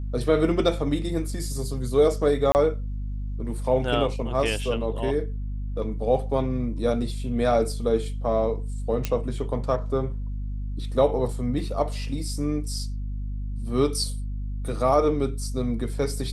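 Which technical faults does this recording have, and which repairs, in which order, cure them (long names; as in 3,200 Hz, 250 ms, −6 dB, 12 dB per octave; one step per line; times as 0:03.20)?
mains hum 50 Hz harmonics 5 −30 dBFS
0:02.52–0:02.55: drop-out 29 ms
0:09.05: click −11 dBFS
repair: click removal
hum removal 50 Hz, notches 5
repair the gap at 0:02.52, 29 ms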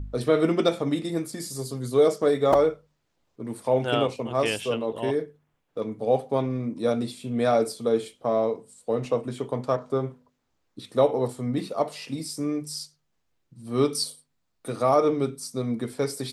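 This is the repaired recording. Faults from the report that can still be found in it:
none of them is left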